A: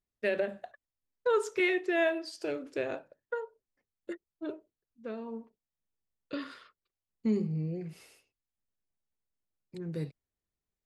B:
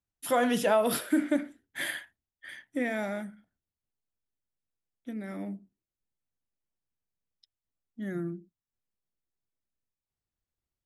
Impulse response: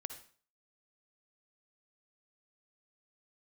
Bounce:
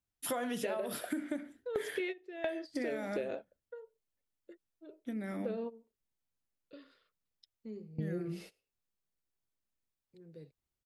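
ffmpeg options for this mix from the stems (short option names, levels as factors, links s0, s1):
-filter_complex "[0:a]equalizer=f=500:t=o:w=1:g=8,equalizer=f=1000:t=o:w=1:g=-5,equalizer=f=4000:t=o:w=1:g=4,equalizer=f=8000:t=o:w=1:g=-4,adelay=400,volume=1.26[s0];[1:a]volume=0.944,asplit=2[s1][s2];[s2]apad=whole_len=496137[s3];[s0][s3]sidechaingate=range=0.0891:threshold=0.00251:ratio=16:detection=peak[s4];[s4][s1]amix=inputs=2:normalize=0,acompressor=threshold=0.0224:ratio=10"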